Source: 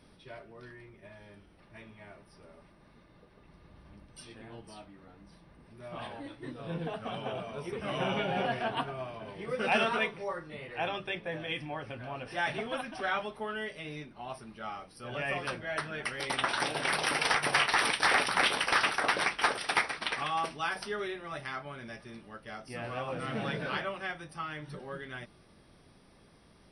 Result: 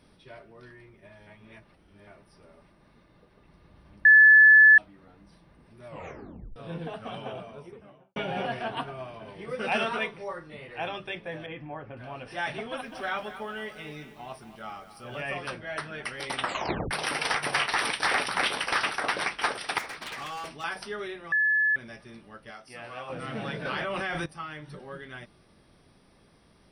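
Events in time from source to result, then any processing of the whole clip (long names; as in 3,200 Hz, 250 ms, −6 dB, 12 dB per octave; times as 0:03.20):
0:01.27–0:02.07: reverse
0:04.05–0:04.78: beep over 1,730 Hz −11 dBFS
0:05.87: tape stop 0.69 s
0:07.16–0:08.16: fade out and dull
0:11.46–0:11.97: low-pass filter 1,600 Hz
0:12.60–0:15.21: feedback echo at a low word length 230 ms, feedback 55%, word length 9 bits, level −12 dB
0:16.43: tape stop 0.48 s
0:19.78–0:20.64: gain into a clipping stage and back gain 34.5 dB
0:21.32–0:21.76: beep over 1,720 Hz −20.5 dBFS
0:22.51–0:23.10: low-shelf EQ 430 Hz −10.5 dB
0:23.65–0:24.26: envelope flattener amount 100%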